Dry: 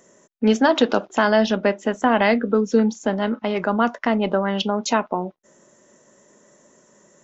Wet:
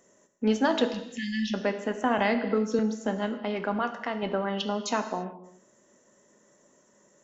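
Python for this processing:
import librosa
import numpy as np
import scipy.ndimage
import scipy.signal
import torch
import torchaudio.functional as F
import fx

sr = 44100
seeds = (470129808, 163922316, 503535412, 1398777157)

y = fx.brickwall_bandstop(x, sr, low_hz=260.0, high_hz=1700.0, at=(0.89, 1.54))
y = fx.low_shelf(y, sr, hz=410.0, db=-9.0, at=(3.79, 4.23))
y = fx.rev_gated(y, sr, seeds[0], gate_ms=360, shape='falling', drr_db=7.5)
y = fx.band_squash(y, sr, depth_pct=40, at=(2.18, 2.79))
y = y * 10.0 ** (-8.0 / 20.0)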